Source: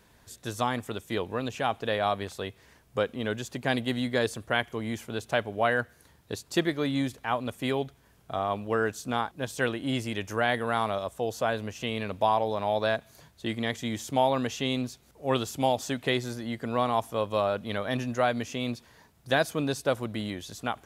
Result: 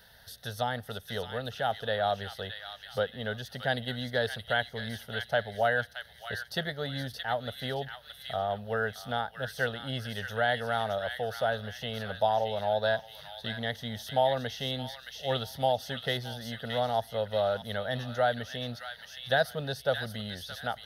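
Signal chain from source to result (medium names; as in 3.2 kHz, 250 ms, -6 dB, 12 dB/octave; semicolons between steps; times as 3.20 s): static phaser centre 1.6 kHz, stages 8; on a send: feedback echo behind a high-pass 622 ms, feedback 32%, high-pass 1.7 kHz, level -5 dB; on the sum: tape noise reduction on one side only encoder only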